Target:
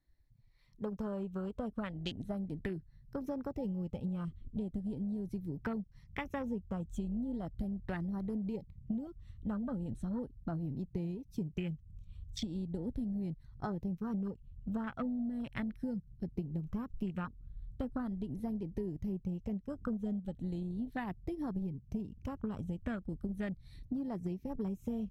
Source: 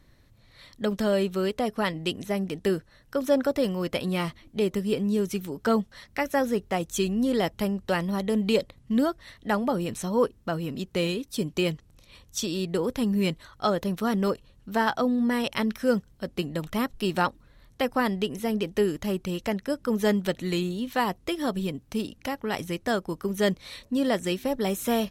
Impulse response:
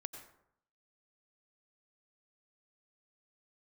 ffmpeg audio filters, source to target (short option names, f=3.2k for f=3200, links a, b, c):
-af "afftfilt=real='re*pow(10,7/40*sin(2*PI*(0.78*log(max(b,1)*sr/1024/100)/log(2)-(0.38)*(pts-256)/sr)))':imag='im*pow(10,7/40*sin(2*PI*(0.78*log(max(b,1)*sr/1024/100)/log(2)-(0.38)*(pts-256)/sr)))':win_size=1024:overlap=0.75,asubboost=boost=6:cutoff=190,acompressor=threshold=-28dB:ratio=8,aeval=exprs='0.178*(cos(1*acos(clip(val(0)/0.178,-1,1)))-cos(1*PI/2))+0.00708*(cos(7*acos(clip(val(0)/0.178,-1,1)))-cos(7*PI/2))':c=same,afwtdn=0.01,volume=-5.5dB"